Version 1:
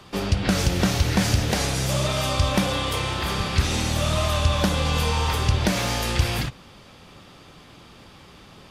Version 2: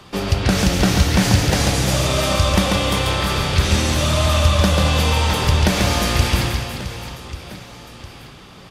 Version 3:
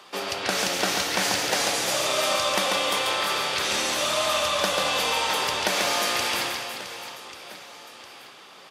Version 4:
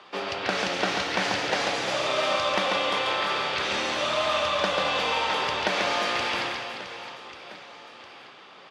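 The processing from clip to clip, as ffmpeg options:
-af "aecho=1:1:140|350|665|1138|1846:0.631|0.398|0.251|0.158|0.1,volume=3.5dB"
-af "highpass=500,volume=-2.5dB"
-af "lowpass=3.6k"

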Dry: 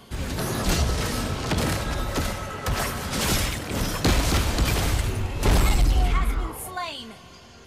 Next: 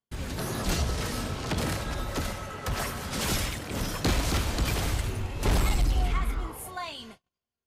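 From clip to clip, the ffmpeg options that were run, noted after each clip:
-af "agate=range=-41dB:threshold=-40dB:ratio=16:detection=peak,volume=-5dB"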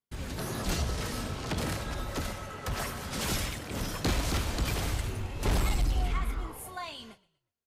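-filter_complex "[0:a]asplit=4[a][b][c][d];[b]adelay=121,afreqshift=-32,volume=-22.5dB[e];[c]adelay=242,afreqshift=-64,volume=-30.2dB[f];[d]adelay=363,afreqshift=-96,volume=-38dB[g];[a][e][f][g]amix=inputs=4:normalize=0,volume=-3dB"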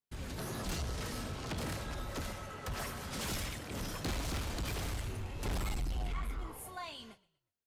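-af "asoftclip=type=tanh:threshold=-27.5dB,volume=-4dB"

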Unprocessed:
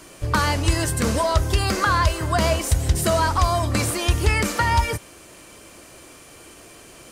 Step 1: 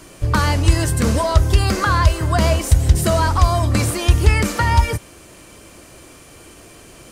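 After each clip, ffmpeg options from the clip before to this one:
-af "lowshelf=f=230:g=6.5,volume=1dB"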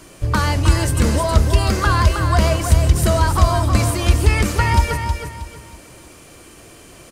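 -af "aecho=1:1:317|634|951|1268:0.473|0.147|0.0455|0.0141,volume=-1dB"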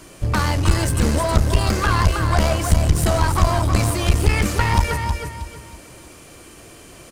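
-af "aeval=exprs='clip(val(0),-1,0.112)':c=same"

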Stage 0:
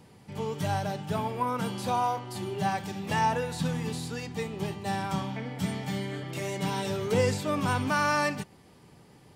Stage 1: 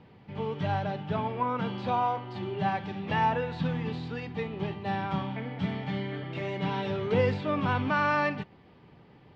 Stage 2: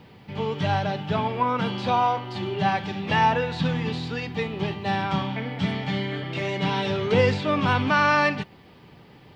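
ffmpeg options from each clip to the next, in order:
-af "lowpass=f=3.5k:w=0.5412,lowpass=f=3.5k:w=1.3066"
-af "crystalizer=i=3:c=0,volume=5dB"

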